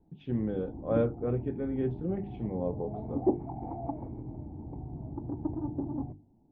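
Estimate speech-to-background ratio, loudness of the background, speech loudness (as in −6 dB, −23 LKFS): 4.5 dB, −38.0 LKFS, −33.5 LKFS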